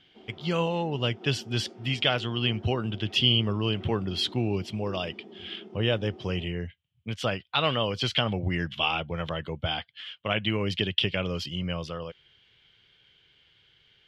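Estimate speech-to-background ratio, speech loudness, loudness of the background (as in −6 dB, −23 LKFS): 18.5 dB, −28.5 LKFS, −47.0 LKFS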